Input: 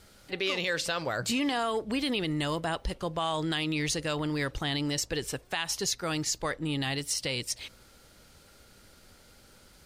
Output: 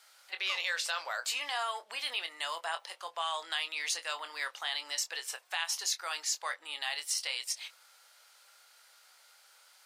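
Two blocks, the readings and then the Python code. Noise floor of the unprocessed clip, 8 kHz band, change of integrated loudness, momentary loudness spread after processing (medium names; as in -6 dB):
-57 dBFS, -1.5 dB, -4.0 dB, 6 LU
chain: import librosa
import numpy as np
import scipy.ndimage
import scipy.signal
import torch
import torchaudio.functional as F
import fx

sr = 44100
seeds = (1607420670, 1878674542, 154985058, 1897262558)

y = scipy.signal.sosfilt(scipy.signal.butter(4, 770.0, 'highpass', fs=sr, output='sos'), x)
y = fx.doubler(y, sr, ms=24.0, db=-9.5)
y = y * 10.0 ** (-2.0 / 20.0)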